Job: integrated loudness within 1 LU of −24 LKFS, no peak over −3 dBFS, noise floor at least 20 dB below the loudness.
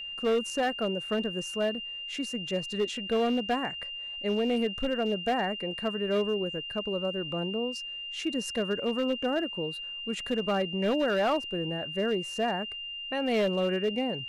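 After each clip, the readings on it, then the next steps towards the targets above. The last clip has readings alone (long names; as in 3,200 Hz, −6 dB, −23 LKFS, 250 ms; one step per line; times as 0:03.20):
share of clipped samples 1.7%; peaks flattened at −21.5 dBFS; interfering tone 2,800 Hz; level of the tone −36 dBFS; integrated loudness −30.0 LKFS; sample peak −21.5 dBFS; target loudness −24.0 LKFS
→ clipped peaks rebuilt −21.5 dBFS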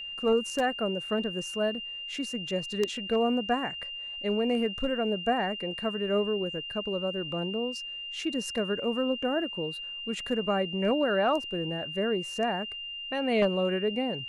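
share of clipped samples 0.0%; interfering tone 2,800 Hz; level of the tone −36 dBFS
→ notch filter 2,800 Hz, Q 30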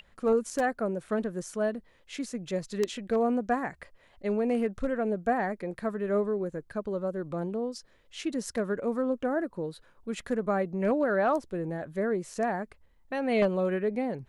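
interfering tone none found; integrated loudness −30.5 LKFS; sample peak −12.0 dBFS; target loudness −24.0 LKFS
→ level +6.5 dB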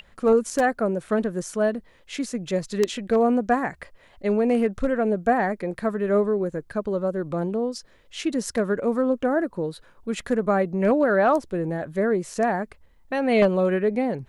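integrated loudness −24.0 LKFS; sample peak −5.5 dBFS; background noise floor −56 dBFS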